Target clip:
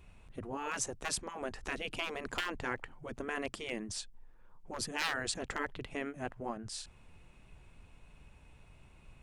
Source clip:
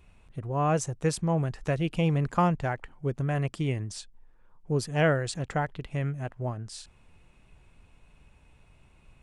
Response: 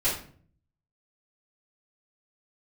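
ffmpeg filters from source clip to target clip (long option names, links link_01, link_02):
-af "aeval=exprs='0.126*(abs(mod(val(0)/0.126+3,4)-2)-1)':channel_layout=same,afftfilt=real='re*lt(hypot(re,im),0.126)':imag='im*lt(hypot(re,im),0.126)':win_size=1024:overlap=0.75"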